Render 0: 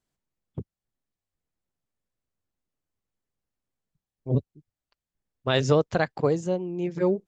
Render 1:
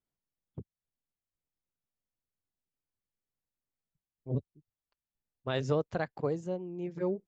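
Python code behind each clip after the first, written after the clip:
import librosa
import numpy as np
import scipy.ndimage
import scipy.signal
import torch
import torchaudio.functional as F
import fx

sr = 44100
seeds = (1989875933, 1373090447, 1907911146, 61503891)

y = fx.high_shelf(x, sr, hz=2800.0, db=-6.5)
y = y * librosa.db_to_amplitude(-8.5)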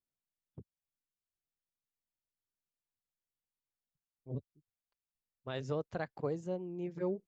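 y = fx.rider(x, sr, range_db=10, speed_s=0.5)
y = y * librosa.db_to_amplitude(-4.0)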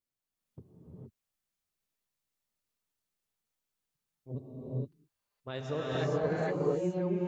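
y = fx.rev_gated(x, sr, seeds[0], gate_ms=490, shape='rising', drr_db=-6.0)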